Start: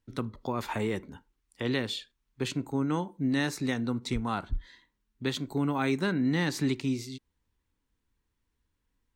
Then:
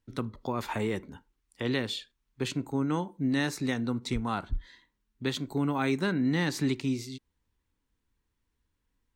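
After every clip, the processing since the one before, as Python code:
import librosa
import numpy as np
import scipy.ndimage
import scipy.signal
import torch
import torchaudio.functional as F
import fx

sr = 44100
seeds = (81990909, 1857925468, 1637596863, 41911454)

y = x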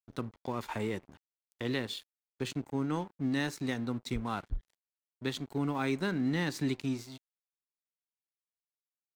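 y = np.sign(x) * np.maximum(np.abs(x) - 10.0 ** (-46.5 / 20.0), 0.0)
y = y * librosa.db_to_amplitude(-3.0)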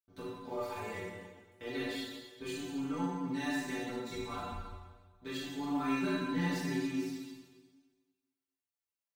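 y = fx.stiff_resonator(x, sr, f0_hz=88.0, decay_s=0.43, stiffness=0.008)
y = fx.rev_plate(y, sr, seeds[0], rt60_s=1.4, hf_ratio=0.95, predelay_ms=0, drr_db=-9.0)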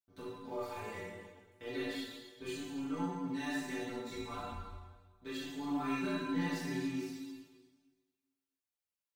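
y = fx.chorus_voices(x, sr, voices=4, hz=0.49, base_ms=22, depth_ms=3.7, mix_pct=30)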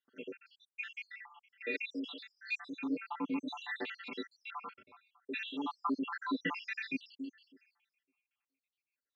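y = fx.spec_dropout(x, sr, seeds[1], share_pct=78)
y = fx.cabinet(y, sr, low_hz=240.0, low_slope=24, high_hz=4200.0, hz=(350.0, 650.0, 1200.0, 2500.0), db=(-8, -7, 6, 10))
y = y * librosa.db_to_amplitude(7.5)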